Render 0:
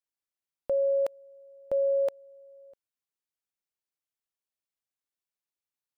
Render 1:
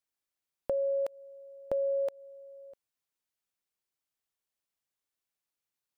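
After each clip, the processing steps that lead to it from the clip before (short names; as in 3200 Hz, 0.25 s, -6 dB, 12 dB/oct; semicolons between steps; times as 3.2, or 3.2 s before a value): compressor, threshold -31 dBFS, peak gain reduction 7 dB; gain +2.5 dB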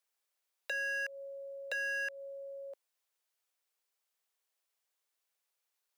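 wavefolder -33.5 dBFS; inverse Chebyshev high-pass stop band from 200 Hz, stop band 40 dB; gain +4.5 dB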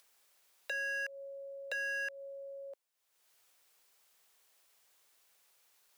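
upward compressor, threshold -54 dBFS; gain -1 dB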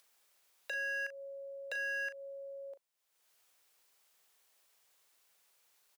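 doubler 38 ms -11 dB; gain -2 dB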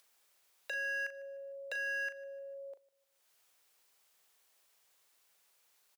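feedback echo 0.151 s, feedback 37%, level -22 dB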